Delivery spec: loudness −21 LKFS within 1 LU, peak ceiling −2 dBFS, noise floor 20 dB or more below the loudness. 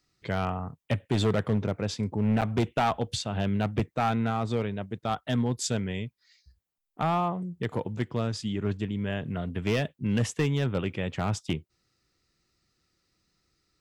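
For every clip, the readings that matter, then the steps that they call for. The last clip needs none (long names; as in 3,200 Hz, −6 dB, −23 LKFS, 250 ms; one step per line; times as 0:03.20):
share of clipped samples 1.0%; peaks flattened at −19.0 dBFS; number of dropouts 1; longest dropout 8.0 ms; integrated loudness −29.5 LKFS; sample peak −19.0 dBFS; target loudness −21.0 LKFS
→ clipped peaks rebuilt −19 dBFS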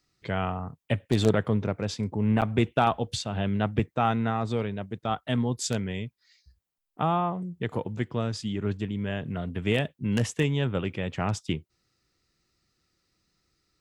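share of clipped samples 0.0%; number of dropouts 1; longest dropout 8.0 ms
→ repair the gap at 0:02.41, 8 ms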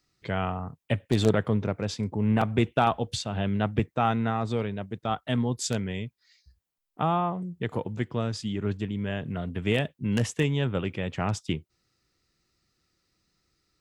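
number of dropouts 0; integrated loudness −28.5 LKFS; sample peak −10.0 dBFS; target loudness −21.0 LKFS
→ level +7.5 dB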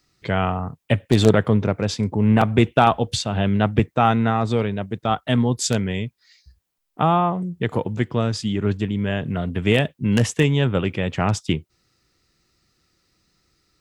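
integrated loudness −21.0 LKFS; sample peak −2.5 dBFS; background noise floor −72 dBFS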